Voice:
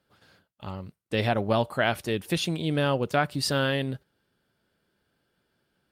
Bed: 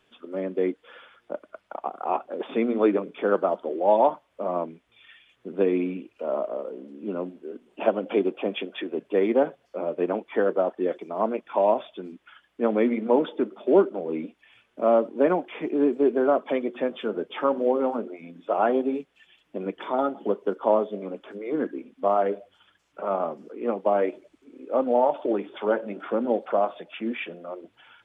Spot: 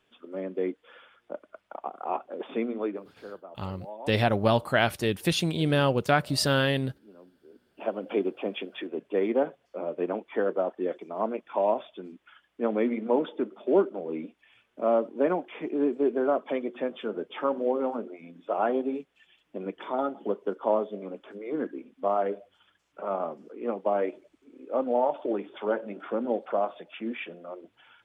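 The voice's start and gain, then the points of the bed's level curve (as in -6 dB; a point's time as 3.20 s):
2.95 s, +1.5 dB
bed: 2.58 s -4.5 dB
3.41 s -22 dB
7.22 s -22 dB
8.09 s -4 dB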